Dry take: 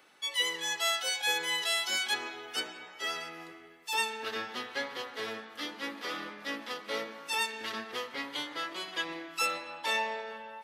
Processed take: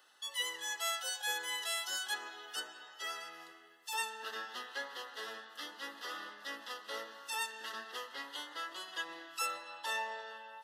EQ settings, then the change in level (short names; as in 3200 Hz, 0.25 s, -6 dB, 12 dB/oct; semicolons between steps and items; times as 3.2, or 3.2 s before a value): HPF 1200 Hz 6 dB/oct; Butterworth band-stop 2300 Hz, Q 3.5; dynamic EQ 4000 Hz, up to -7 dB, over -46 dBFS, Q 1; -1.0 dB